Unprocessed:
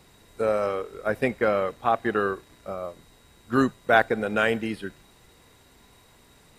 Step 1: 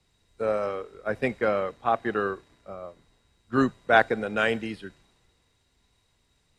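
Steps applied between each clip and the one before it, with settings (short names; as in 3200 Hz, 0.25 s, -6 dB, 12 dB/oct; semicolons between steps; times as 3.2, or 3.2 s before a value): LPF 7500 Hz 12 dB/oct; three-band expander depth 40%; gain -2.5 dB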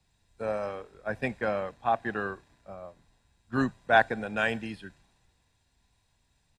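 comb 1.2 ms, depth 42%; gain -3.5 dB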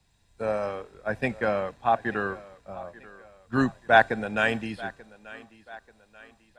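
thinning echo 0.886 s, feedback 47%, high-pass 230 Hz, level -19 dB; gain +3.5 dB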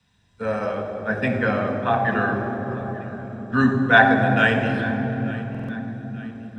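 reverb RT60 4.3 s, pre-delay 3 ms, DRR 1.5 dB; stuck buffer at 5.5, samples 2048, times 3; gain -5.5 dB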